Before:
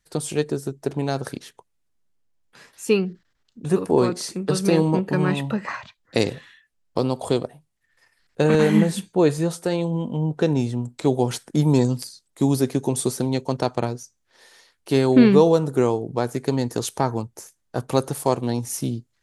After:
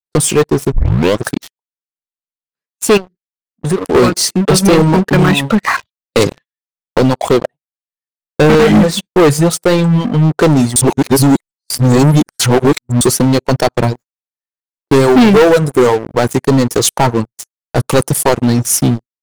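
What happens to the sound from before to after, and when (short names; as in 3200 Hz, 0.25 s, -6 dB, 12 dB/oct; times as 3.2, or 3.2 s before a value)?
0.72 tape start 0.54 s
2.97–3.95 compressor 2:1, threshold -35 dBFS
6.33–9.14 LPF 6200 Hz
10.76–13.01 reverse
13.95–14.93 median filter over 15 samples
whole clip: reverb removal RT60 1.3 s; gate -40 dBFS, range -34 dB; sample leveller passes 5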